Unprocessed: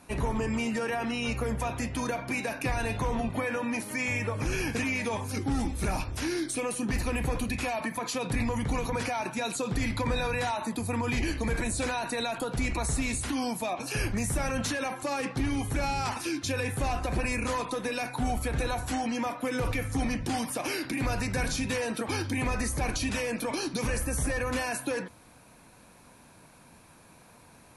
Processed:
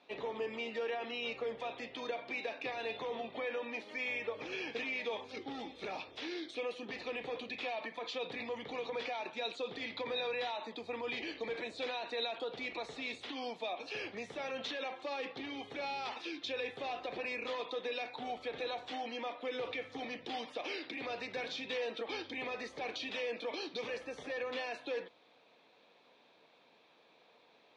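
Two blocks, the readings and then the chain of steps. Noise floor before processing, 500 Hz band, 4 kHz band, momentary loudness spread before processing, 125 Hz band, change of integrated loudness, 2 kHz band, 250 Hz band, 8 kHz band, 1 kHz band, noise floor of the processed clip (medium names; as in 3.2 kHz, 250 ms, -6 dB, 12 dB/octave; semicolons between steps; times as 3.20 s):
-55 dBFS, -5.5 dB, -4.0 dB, 2 LU, -29.0 dB, -9.0 dB, -7.5 dB, -16.0 dB, -24.5 dB, -9.0 dB, -66 dBFS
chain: cabinet simulation 440–4200 Hz, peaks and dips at 450 Hz +6 dB, 1 kHz -5 dB, 1.5 kHz -8 dB, 3.5 kHz +9 dB; trim -6.5 dB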